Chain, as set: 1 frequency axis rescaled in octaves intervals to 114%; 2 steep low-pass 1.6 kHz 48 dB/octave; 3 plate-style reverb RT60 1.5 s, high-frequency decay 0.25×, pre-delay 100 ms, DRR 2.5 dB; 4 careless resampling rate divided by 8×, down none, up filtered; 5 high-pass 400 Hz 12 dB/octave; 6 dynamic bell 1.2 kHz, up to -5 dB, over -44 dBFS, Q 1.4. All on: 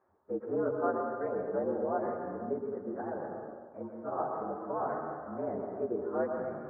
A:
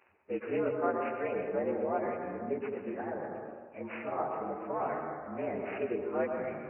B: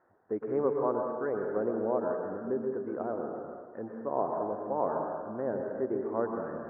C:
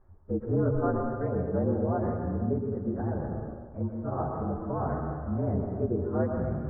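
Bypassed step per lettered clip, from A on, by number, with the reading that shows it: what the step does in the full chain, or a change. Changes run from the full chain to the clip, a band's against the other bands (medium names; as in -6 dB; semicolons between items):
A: 2, 2 kHz band +6.0 dB; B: 1, 2 kHz band -1.5 dB; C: 5, 125 Hz band +19.0 dB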